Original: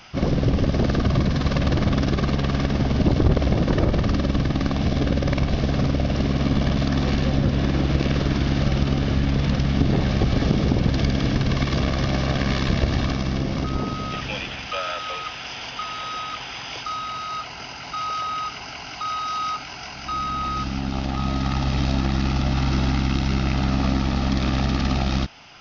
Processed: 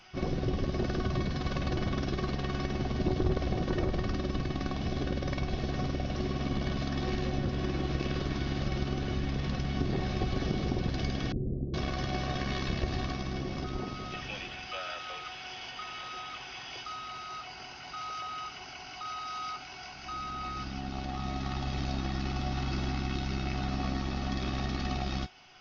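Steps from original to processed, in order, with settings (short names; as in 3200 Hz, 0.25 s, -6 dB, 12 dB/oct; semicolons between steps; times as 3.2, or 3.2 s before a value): resonator 370 Hz, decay 0.15 s, harmonics all, mix 80%; 11.32–11.74 steep low-pass 500 Hz 36 dB/oct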